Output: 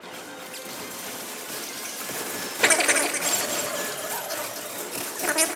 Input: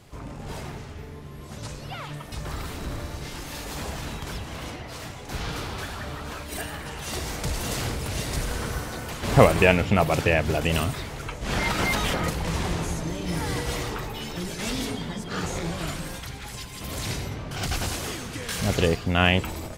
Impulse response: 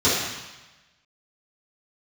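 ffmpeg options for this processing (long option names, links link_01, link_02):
-filter_complex "[0:a]highpass=frequency=150:poles=1,acompressor=mode=upward:threshold=-33dB:ratio=2.5,asetrate=156996,aresample=44100,aecho=1:1:255:0.501,asplit=2[link_01][link_02];[1:a]atrim=start_sample=2205,asetrate=70560,aresample=44100[link_03];[link_02][link_03]afir=irnorm=-1:irlink=0,volume=-23dB[link_04];[link_01][link_04]amix=inputs=2:normalize=0,aresample=32000,aresample=44100,adynamicequalizer=threshold=0.00708:dfrequency=5200:dqfactor=0.7:tfrequency=5200:tqfactor=0.7:attack=5:release=100:ratio=0.375:range=2.5:mode=boostabove:tftype=highshelf,volume=-2dB"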